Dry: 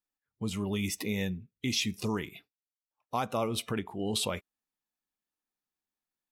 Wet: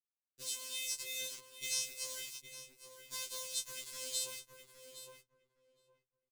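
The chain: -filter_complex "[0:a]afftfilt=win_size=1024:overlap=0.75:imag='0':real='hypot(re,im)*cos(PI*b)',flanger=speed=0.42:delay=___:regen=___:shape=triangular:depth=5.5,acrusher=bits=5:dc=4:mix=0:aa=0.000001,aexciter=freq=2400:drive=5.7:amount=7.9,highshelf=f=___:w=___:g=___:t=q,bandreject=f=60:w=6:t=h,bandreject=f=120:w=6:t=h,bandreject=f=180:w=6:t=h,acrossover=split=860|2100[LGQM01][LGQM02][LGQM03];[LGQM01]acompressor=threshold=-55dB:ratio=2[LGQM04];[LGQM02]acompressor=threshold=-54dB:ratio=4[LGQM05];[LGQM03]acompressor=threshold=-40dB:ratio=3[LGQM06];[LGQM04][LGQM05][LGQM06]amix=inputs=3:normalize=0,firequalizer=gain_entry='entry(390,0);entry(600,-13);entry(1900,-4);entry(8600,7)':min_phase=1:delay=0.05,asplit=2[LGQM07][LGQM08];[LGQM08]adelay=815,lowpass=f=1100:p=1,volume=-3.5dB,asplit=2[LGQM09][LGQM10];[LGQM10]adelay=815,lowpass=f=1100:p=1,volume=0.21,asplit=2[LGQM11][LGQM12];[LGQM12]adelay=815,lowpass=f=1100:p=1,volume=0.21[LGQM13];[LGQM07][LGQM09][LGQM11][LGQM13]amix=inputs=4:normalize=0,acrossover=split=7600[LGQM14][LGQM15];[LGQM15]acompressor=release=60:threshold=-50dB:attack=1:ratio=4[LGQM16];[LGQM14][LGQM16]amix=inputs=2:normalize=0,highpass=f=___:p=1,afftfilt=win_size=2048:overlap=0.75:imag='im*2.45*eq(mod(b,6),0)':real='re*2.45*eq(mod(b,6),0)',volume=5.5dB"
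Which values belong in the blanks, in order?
1.1, -54, 1900, 1.5, -8, 51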